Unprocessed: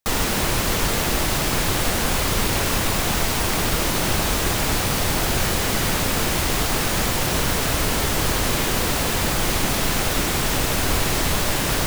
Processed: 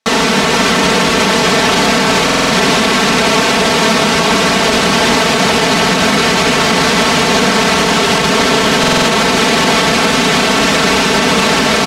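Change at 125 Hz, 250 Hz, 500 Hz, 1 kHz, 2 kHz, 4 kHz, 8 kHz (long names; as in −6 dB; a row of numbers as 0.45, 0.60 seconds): +4.5, +12.5, +13.5, +13.0, +13.0, +12.5, +6.0 decibels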